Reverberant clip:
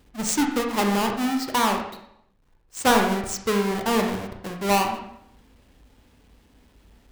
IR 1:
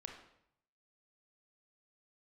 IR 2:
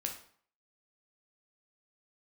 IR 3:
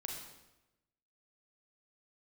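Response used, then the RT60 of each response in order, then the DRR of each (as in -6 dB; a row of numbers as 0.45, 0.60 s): 1; 0.70, 0.55, 1.0 s; 2.5, 1.5, 0.0 dB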